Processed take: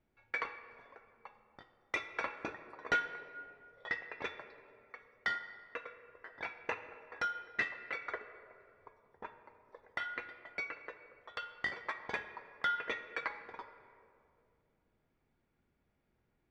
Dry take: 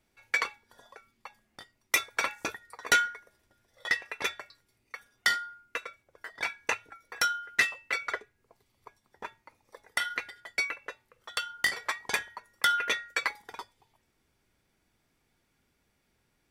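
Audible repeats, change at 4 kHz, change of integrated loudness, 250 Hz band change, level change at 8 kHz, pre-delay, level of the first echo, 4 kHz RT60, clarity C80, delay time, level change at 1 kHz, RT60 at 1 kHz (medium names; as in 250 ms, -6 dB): no echo, -15.0 dB, -9.5 dB, -3.0 dB, under -20 dB, 6 ms, no echo, 1.3 s, 11.0 dB, no echo, -7.0 dB, 2.2 s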